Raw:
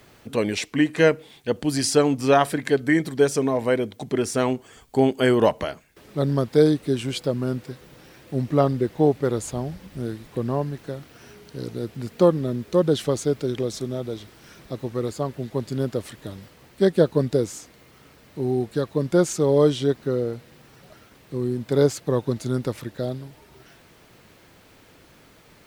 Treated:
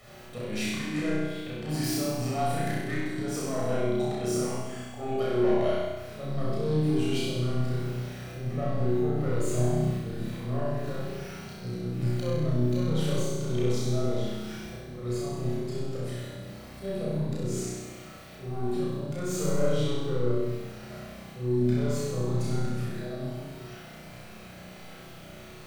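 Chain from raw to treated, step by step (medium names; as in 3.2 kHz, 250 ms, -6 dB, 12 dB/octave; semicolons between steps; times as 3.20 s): self-modulated delay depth 0.13 ms; hum notches 50/100/150/200/250/300/350/400 Hz; slow attack 279 ms; compression 2.5:1, threshold -32 dBFS, peak gain reduction 12 dB; saturation -28 dBFS, distortion -14 dB; flutter echo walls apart 5.6 m, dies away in 1.1 s; reverberation RT60 0.80 s, pre-delay 17 ms, DRR -2 dB; trim -5 dB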